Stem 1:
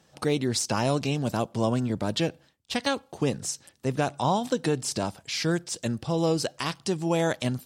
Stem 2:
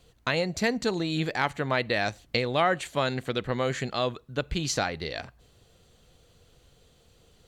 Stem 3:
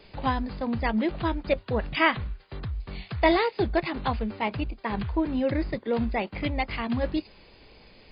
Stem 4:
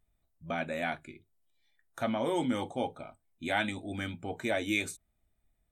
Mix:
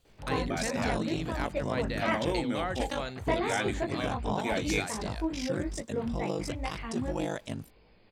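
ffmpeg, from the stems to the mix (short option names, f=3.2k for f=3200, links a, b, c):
-filter_complex "[0:a]bandreject=f=4.3k:w=7.2,aeval=exprs='val(0)*sin(2*PI*25*n/s)':c=same,adelay=50,volume=-6.5dB[a];[1:a]highshelf=f=11k:g=9,volume=-10.5dB[b];[2:a]flanger=delay=16.5:depth=5.2:speed=2.4,aemphasis=mode=reproduction:type=75kf,adelay=50,volume=-4.5dB[c];[3:a]volume=-1.5dB[d];[a][b][c][d]amix=inputs=4:normalize=0"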